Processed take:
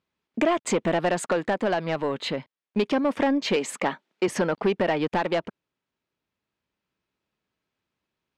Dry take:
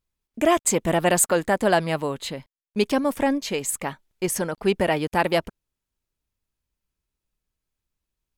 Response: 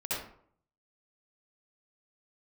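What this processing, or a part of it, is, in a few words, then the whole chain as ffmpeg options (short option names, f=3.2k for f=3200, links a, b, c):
AM radio: -filter_complex "[0:a]asettb=1/sr,asplit=3[a][b][c];[a]atrim=end=3.564[d];[b]atrim=start=3.56:end=4.28,asetpts=PTS-STARTPTS,afade=t=in:d=0.004:c=qsin,afade=t=out:st=0.716:d=0.004:c=qsin,highpass=f=180:w=0.5412,highpass=f=180:w=1.3066[e];[c]atrim=start=4.276[f];[d][e]acrossfade=d=0.004:c1=hsin:c2=qsin[g];[g][f]acrossfade=d=0.004:c1=qsin:c2=hsin,highpass=170,lowpass=3.4k,acompressor=threshold=-25dB:ratio=6,asoftclip=type=tanh:threshold=-22.5dB,tremolo=f=0.26:d=0.26,volume=8.5dB"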